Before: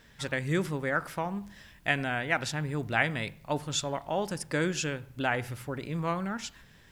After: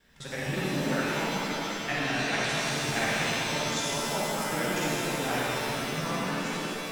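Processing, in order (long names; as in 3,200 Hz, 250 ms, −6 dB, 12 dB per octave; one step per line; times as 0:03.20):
reversed piece by piece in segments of 40 ms
reverb with rising layers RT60 2.9 s, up +7 semitones, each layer −2 dB, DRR −7 dB
level −8 dB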